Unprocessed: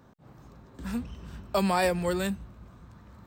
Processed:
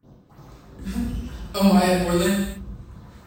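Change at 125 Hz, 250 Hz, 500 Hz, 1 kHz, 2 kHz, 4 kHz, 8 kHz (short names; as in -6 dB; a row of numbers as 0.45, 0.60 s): +10.0, +10.5, +5.5, +4.0, +4.5, +8.0, +9.0 dB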